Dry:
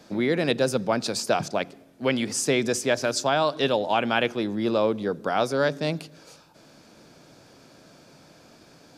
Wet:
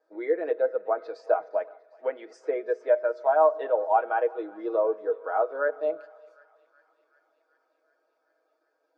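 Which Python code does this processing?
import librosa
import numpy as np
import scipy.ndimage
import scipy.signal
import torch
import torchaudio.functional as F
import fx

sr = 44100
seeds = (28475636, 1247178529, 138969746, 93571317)

y = scipy.signal.sosfilt(scipy.signal.butter(4, 400.0, 'highpass', fs=sr, output='sos'), x)
y = fx.env_lowpass_down(y, sr, base_hz=1800.0, full_db=-21.0)
y = fx.band_shelf(y, sr, hz=5100.0, db=-8.5, octaves=2.5)
y = y + 0.61 * np.pad(y, (int(6.3 * sr / 1000.0), 0))[:len(y)]
y = fx.echo_thinned(y, sr, ms=377, feedback_pct=83, hz=730.0, wet_db=-15.5)
y = fx.rev_fdn(y, sr, rt60_s=2.0, lf_ratio=1.05, hf_ratio=0.75, size_ms=14.0, drr_db=14.5)
y = fx.spectral_expand(y, sr, expansion=1.5)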